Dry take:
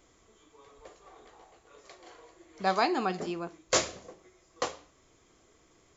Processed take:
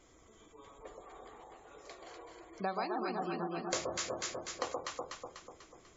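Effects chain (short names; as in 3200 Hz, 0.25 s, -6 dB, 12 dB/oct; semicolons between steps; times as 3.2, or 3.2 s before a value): on a send: echo with dull and thin repeats by turns 0.123 s, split 1100 Hz, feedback 71%, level -2 dB; on the sum: compressor 6:1, threshold -33 dBFS, peak gain reduction 12.5 dB; spectral gate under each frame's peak -25 dB strong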